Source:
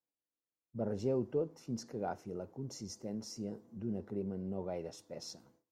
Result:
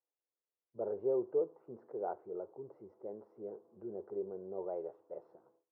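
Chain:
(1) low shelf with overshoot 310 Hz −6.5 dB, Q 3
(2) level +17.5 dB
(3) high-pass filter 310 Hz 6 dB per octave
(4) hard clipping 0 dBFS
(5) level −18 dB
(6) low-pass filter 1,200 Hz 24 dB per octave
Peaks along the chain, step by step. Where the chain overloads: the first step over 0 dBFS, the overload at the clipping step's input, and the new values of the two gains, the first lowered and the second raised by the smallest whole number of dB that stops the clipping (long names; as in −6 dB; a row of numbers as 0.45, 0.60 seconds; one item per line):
−21.5, −4.0, −5.5, −5.5, −23.5, −23.5 dBFS
no step passes full scale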